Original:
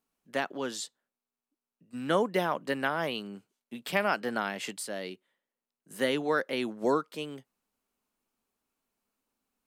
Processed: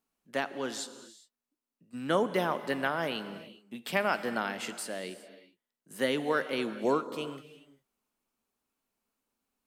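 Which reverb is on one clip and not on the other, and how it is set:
reverb whose tail is shaped and stops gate 430 ms flat, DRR 11.5 dB
level −1 dB

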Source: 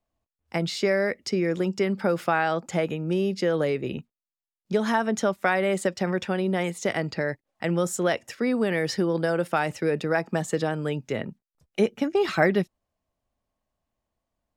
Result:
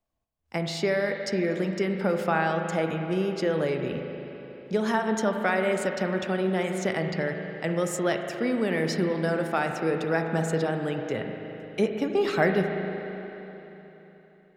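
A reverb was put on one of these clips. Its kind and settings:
spring reverb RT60 3.6 s, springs 37/43 ms, chirp 40 ms, DRR 4 dB
level −2.5 dB

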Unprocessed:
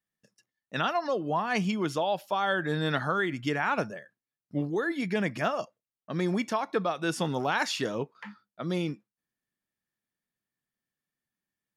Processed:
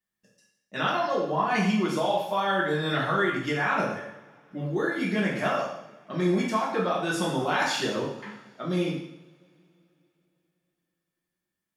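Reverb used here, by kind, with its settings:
coupled-rooms reverb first 0.73 s, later 3.5 s, from −27 dB, DRR −5.5 dB
level −3.5 dB

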